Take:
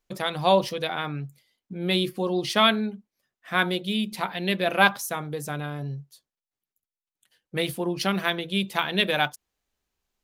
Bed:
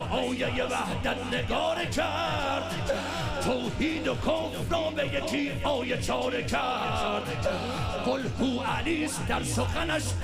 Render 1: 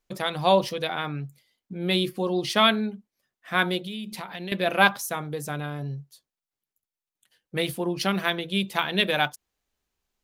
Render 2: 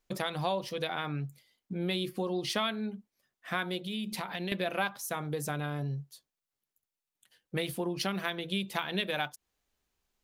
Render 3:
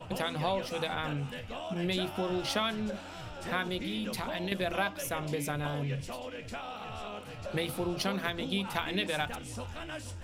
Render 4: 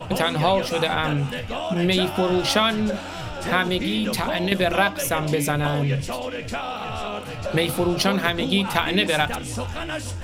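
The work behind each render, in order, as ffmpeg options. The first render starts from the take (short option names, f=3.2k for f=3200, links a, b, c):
-filter_complex "[0:a]asettb=1/sr,asplit=3[a][b][c];[a]atrim=end=3.854[d];[b]atrim=start=3.85:end=4.52,asetpts=PTS-STARTPTS,afade=t=in:d=0.004:c=qsin,afade=t=out:st=0.666:d=0.004:c=qsin,acompressor=threshold=-31dB:ratio=6:attack=3.2:release=140:knee=1:detection=peak[e];[c]atrim=start=4.516[f];[d][e]acrossfade=d=0.004:c1=hsin:c2=qsin[g];[g][f]acrossfade=d=0.004:c1=qsin:c2=hsin"
-af "acompressor=threshold=-30dB:ratio=4"
-filter_complex "[1:a]volume=-12.5dB[a];[0:a][a]amix=inputs=2:normalize=0"
-af "volume=11.5dB"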